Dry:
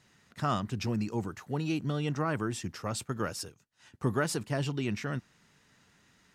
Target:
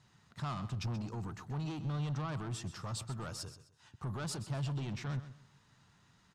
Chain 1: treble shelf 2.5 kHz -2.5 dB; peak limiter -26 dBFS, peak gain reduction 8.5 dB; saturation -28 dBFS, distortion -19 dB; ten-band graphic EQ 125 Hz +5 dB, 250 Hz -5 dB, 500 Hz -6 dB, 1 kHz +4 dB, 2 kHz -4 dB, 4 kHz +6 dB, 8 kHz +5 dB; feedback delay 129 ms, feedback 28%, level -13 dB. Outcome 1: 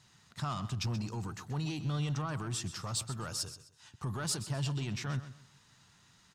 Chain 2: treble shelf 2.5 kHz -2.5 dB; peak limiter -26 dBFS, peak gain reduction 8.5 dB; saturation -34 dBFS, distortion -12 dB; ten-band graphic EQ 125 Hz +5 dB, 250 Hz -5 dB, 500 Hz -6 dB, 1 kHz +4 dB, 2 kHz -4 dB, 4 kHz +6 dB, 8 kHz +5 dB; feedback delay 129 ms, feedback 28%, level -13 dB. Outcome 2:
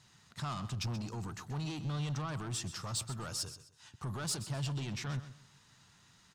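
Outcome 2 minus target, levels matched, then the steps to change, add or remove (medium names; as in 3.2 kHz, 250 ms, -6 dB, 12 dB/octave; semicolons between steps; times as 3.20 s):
4 kHz band +4.5 dB
change: treble shelf 2.5 kHz -12.5 dB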